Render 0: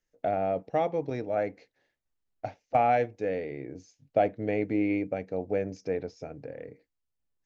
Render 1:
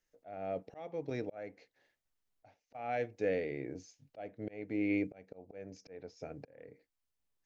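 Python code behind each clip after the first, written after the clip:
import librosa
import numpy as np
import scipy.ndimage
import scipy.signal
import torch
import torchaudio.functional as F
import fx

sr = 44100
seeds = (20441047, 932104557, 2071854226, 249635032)

y = fx.low_shelf(x, sr, hz=410.0, db=-4.5)
y = fx.auto_swell(y, sr, attack_ms=551.0)
y = fx.dynamic_eq(y, sr, hz=900.0, q=1.4, threshold_db=-48.0, ratio=4.0, max_db=-5)
y = y * 10.0 ** (1.0 / 20.0)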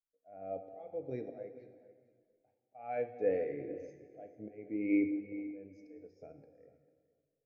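y = fx.echo_feedback(x, sr, ms=449, feedback_pct=24, wet_db=-13.5)
y = fx.rev_plate(y, sr, seeds[0], rt60_s=2.6, hf_ratio=0.9, predelay_ms=0, drr_db=4.0)
y = fx.spectral_expand(y, sr, expansion=1.5)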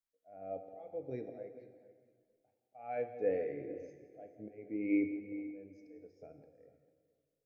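y = x + 10.0 ** (-17.0 / 20.0) * np.pad(x, (int(170 * sr / 1000.0), 0))[:len(x)]
y = y * 10.0 ** (-1.5 / 20.0)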